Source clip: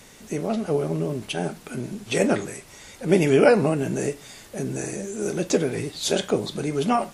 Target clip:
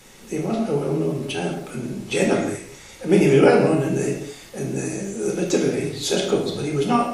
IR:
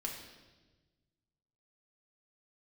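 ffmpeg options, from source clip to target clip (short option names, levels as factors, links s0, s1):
-filter_complex "[1:a]atrim=start_sample=2205,afade=t=out:st=0.32:d=0.01,atrim=end_sample=14553,asetrate=52920,aresample=44100[s0];[0:a][s0]afir=irnorm=-1:irlink=0,volume=1.5"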